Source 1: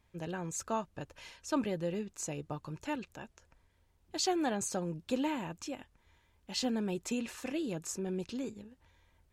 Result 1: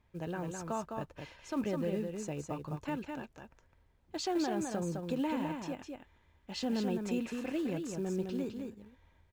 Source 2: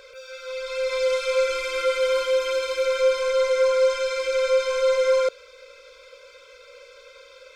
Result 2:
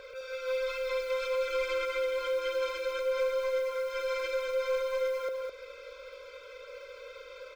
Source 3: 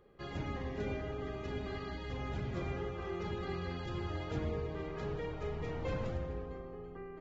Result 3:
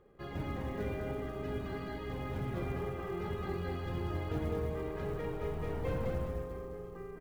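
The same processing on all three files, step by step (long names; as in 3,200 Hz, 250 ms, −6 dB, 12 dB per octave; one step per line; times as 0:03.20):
low-pass filter 2,200 Hz 6 dB per octave
downward compressor 12 to 1, threshold −26 dBFS
brickwall limiter −26.5 dBFS
floating-point word with a short mantissa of 4 bits
single-tap delay 208 ms −5 dB
level +1 dB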